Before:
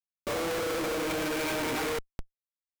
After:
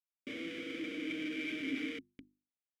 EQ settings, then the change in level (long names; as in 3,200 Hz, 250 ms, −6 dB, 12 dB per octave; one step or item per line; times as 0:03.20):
formant filter i
mains-hum notches 50/100/150/200/250/300/350 Hz
notch filter 4,200 Hz, Q 9.6
+4.5 dB